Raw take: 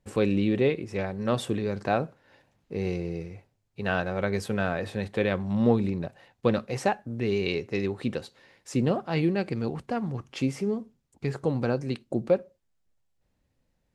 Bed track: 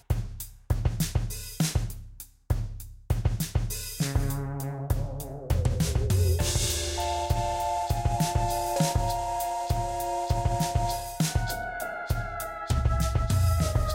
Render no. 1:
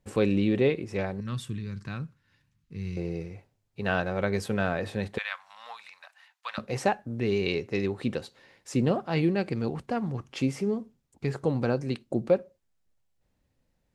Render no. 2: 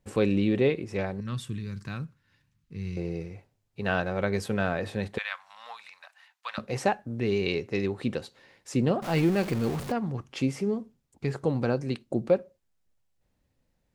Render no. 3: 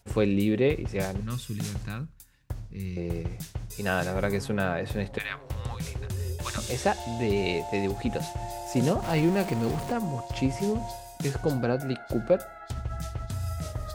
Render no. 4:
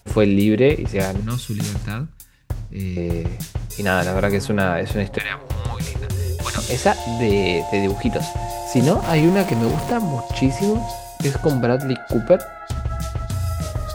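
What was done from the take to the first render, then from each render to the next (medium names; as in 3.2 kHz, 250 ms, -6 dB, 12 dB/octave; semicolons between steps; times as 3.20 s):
1.20–2.97 s: FFT filter 150 Hz 0 dB, 690 Hz -27 dB, 1.1 kHz -10 dB, 5.5 kHz -5 dB; 5.18–6.58 s: inverse Chebyshev high-pass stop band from 390 Hz, stop band 50 dB
1.52–2.05 s: treble shelf 8.3 kHz +9.5 dB; 9.02–9.92 s: jump at every zero crossing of -32 dBFS
add bed track -8.5 dB
trim +8.5 dB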